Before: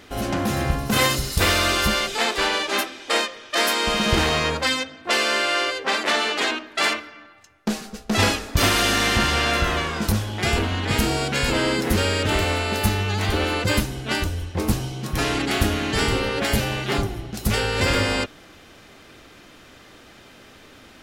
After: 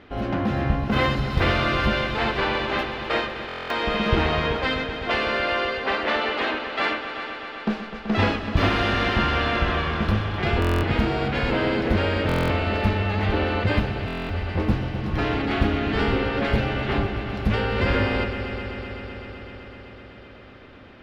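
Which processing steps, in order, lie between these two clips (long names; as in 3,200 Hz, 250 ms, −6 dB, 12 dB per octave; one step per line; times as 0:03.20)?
high-frequency loss of the air 340 metres
echo machine with several playback heads 127 ms, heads all three, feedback 75%, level −15 dB
buffer that repeats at 0:03.47/0:10.60/0:12.27/0:14.06, samples 1,024, times 9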